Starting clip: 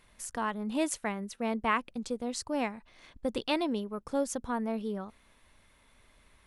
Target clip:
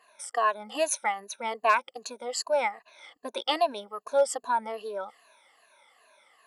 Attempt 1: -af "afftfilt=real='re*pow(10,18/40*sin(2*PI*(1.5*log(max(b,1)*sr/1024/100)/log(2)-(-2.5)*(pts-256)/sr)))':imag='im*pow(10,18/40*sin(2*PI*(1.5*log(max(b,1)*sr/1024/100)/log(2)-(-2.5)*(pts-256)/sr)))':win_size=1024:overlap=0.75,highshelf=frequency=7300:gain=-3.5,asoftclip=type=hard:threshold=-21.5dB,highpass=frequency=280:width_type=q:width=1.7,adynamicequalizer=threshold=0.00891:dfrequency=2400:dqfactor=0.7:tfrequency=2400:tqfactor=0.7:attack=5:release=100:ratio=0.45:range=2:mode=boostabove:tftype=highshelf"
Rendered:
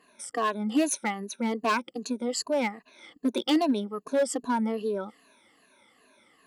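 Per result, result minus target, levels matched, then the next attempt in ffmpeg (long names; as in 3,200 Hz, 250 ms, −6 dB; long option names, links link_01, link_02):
250 Hz band +16.5 dB; hard clipping: distortion +19 dB
-af "afftfilt=real='re*pow(10,18/40*sin(2*PI*(1.5*log(max(b,1)*sr/1024/100)/log(2)-(-2.5)*(pts-256)/sr)))':imag='im*pow(10,18/40*sin(2*PI*(1.5*log(max(b,1)*sr/1024/100)/log(2)-(-2.5)*(pts-256)/sr)))':win_size=1024:overlap=0.75,highshelf=frequency=7300:gain=-3.5,asoftclip=type=hard:threshold=-21.5dB,highpass=frequency=660:width_type=q:width=1.7,adynamicequalizer=threshold=0.00891:dfrequency=2400:dqfactor=0.7:tfrequency=2400:tqfactor=0.7:attack=5:release=100:ratio=0.45:range=2:mode=boostabove:tftype=highshelf"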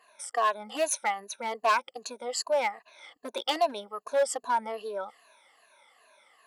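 hard clipping: distortion +19 dB
-af "afftfilt=real='re*pow(10,18/40*sin(2*PI*(1.5*log(max(b,1)*sr/1024/100)/log(2)-(-2.5)*(pts-256)/sr)))':imag='im*pow(10,18/40*sin(2*PI*(1.5*log(max(b,1)*sr/1024/100)/log(2)-(-2.5)*(pts-256)/sr)))':win_size=1024:overlap=0.75,highshelf=frequency=7300:gain=-3.5,asoftclip=type=hard:threshold=-15dB,highpass=frequency=660:width_type=q:width=1.7,adynamicequalizer=threshold=0.00891:dfrequency=2400:dqfactor=0.7:tfrequency=2400:tqfactor=0.7:attack=5:release=100:ratio=0.45:range=2:mode=boostabove:tftype=highshelf"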